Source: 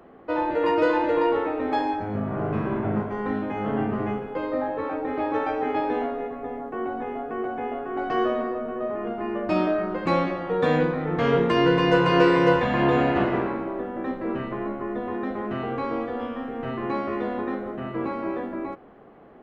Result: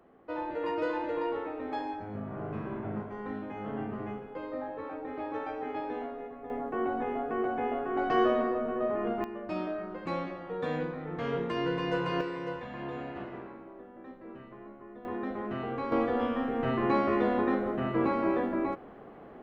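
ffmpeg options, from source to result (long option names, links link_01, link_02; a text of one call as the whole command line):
ffmpeg -i in.wav -af "asetnsamples=nb_out_samples=441:pad=0,asendcmd='6.5 volume volume -1.5dB;9.24 volume volume -11.5dB;12.21 volume volume -18dB;15.05 volume volume -6dB;15.92 volume volume 1dB',volume=-10.5dB" out.wav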